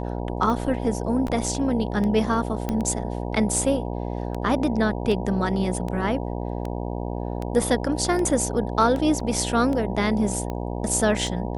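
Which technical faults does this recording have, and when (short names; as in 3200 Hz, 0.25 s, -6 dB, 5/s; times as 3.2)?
buzz 60 Hz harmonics 16 -29 dBFS
tick 78 rpm -18 dBFS
1.28 gap 3.1 ms
2.69 pop -13 dBFS
9.2 gap 3.5 ms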